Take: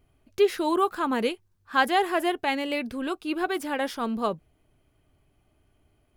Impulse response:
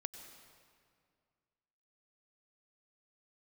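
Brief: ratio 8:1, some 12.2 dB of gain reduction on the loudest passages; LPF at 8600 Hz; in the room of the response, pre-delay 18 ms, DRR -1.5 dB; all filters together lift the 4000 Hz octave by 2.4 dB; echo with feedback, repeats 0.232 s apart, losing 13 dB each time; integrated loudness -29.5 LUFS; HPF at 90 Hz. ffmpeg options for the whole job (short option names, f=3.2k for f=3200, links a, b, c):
-filter_complex "[0:a]highpass=90,lowpass=8.6k,equalizer=f=4k:t=o:g=3.5,acompressor=threshold=-28dB:ratio=8,aecho=1:1:232|464|696:0.224|0.0493|0.0108,asplit=2[a][b];[1:a]atrim=start_sample=2205,adelay=18[c];[b][c]afir=irnorm=-1:irlink=0,volume=4dB[d];[a][d]amix=inputs=2:normalize=0,volume=-0.5dB"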